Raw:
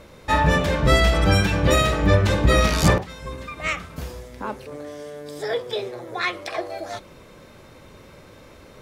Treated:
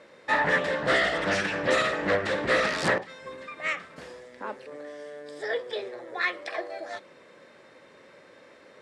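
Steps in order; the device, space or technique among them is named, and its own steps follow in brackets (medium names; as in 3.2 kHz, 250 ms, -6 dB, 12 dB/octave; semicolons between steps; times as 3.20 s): full-range speaker at full volume (loudspeaker Doppler distortion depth 0.6 ms; cabinet simulation 260–8800 Hz, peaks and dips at 540 Hz +4 dB, 1.8 kHz +9 dB, 6.3 kHz -5 dB); 0.71–1.19 s: band-stop 2.3 kHz, Q 10; trim -6.5 dB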